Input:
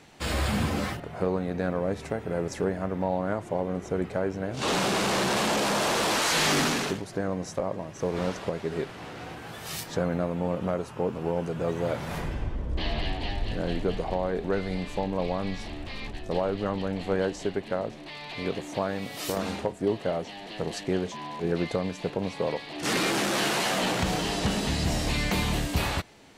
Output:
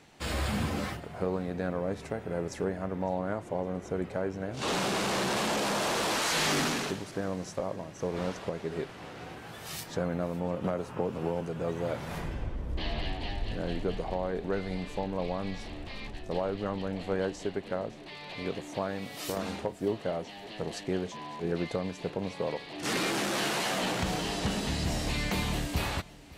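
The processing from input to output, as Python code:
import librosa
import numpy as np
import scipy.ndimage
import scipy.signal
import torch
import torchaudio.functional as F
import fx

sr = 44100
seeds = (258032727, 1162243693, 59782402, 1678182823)

p1 = x + fx.echo_feedback(x, sr, ms=559, feedback_pct=44, wet_db=-21.5, dry=0)
p2 = fx.band_squash(p1, sr, depth_pct=100, at=(10.64, 11.41))
y = p2 * 10.0 ** (-4.0 / 20.0)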